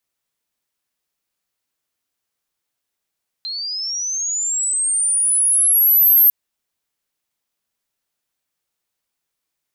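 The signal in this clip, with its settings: chirp linear 4100 Hz -> 13000 Hz -24 dBFS -> -8 dBFS 2.85 s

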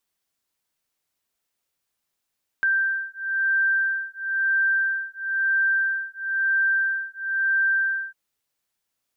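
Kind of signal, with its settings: beating tones 1570 Hz, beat 1 Hz, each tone -23.5 dBFS 5.50 s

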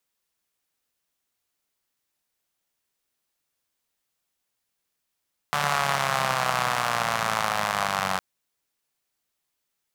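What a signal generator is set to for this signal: four-cylinder engine model, changing speed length 2.66 s, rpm 4400, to 2800, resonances 170/760/1100 Hz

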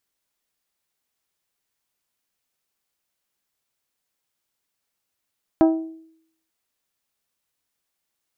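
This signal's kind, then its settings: glass hit bell, lowest mode 323 Hz, modes 6, decay 0.69 s, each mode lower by 6 dB, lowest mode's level -10 dB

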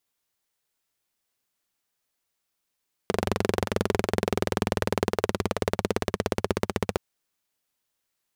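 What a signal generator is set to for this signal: single-cylinder engine model, changing speed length 3.87 s, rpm 2800, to 1800, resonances 100/200/390 Hz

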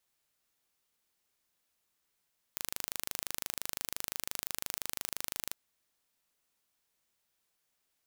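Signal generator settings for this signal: pulse train 25.8/s, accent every 0, -8 dBFS 2.98 s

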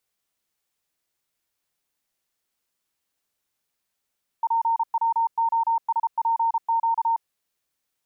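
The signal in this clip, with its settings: Morse "PWOSPQ" 33 wpm 916 Hz -18.5 dBFS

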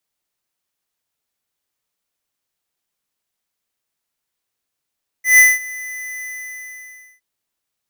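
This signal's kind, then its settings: ADSR square 2010 Hz, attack 0.143 s, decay 0.203 s, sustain -22 dB, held 0.99 s, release 0.973 s -7 dBFS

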